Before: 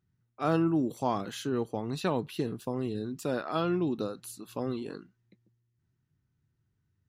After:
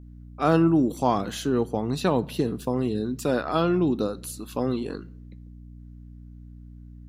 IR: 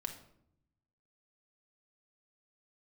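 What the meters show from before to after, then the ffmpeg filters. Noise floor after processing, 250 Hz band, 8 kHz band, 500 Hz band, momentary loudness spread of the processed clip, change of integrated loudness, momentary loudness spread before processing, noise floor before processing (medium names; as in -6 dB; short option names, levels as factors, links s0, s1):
-44 dBFS, +7.0 dB, +7.0 dB, +6.5 dB, 10 LU, +6.5 dB, 9 LU, -78 dBFS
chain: -filter_complex "[0:a]adynamicequalizer=threshold=0.00398:dfrequency=2200:dqfactor=0.79:tfrequency=2200:tqfactor=0.79:attack=5:release=100:ratio=0.375:range=2:mode=cutabove:tftype=bell,aeval=exprs='val(0)+0.00316*(sin(2*PI*60*n/s)+sin(2*PI*2*60*n/s)/2+sin(2*PI*3*60*n/s)/3+sin(2*PI*4*60*n/s)/4+sin(2*PI*5*60*n/s)/5)':c=same,asplit=2[s0][s1];[1:a]atrim=start_sample=2205[s2];[s1][s2]afir=irnorm=-1:irlink=0,volume=0.251[s3];[s0][s3]amix=inputs=2:normalize=0,volume=1.88"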